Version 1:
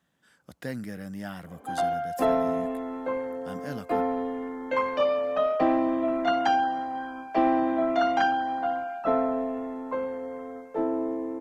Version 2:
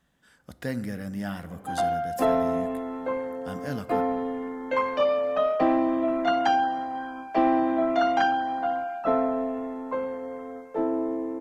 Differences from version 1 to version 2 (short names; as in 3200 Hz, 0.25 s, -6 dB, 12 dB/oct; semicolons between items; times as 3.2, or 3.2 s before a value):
speech: remove HPF 110 Hz; reverb: on, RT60 1.3 s